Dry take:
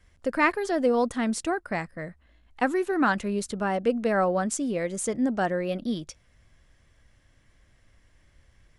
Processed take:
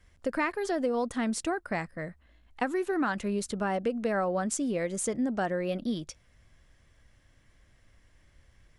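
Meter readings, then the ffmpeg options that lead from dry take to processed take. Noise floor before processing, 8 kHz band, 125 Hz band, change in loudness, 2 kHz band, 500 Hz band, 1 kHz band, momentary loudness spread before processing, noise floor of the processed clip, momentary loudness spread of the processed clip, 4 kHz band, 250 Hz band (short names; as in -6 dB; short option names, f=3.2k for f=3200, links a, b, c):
-62 dBFS, -1.5 dB, -3.0 dB, -4.0 dB, -5.5 dB, -4.0 dB, -5.0 dB, 8 LU, -63 dBFS, 6 LU, -3.0 dB, -3.5 dB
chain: -af "acompressor=threshold=-24dB:ratio=6,volume=-1dB"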